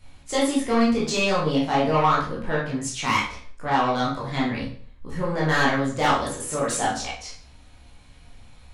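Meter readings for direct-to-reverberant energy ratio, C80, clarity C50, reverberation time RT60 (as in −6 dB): −7.5 dB, 9.5 dB, 3.5 dB, 0.50 s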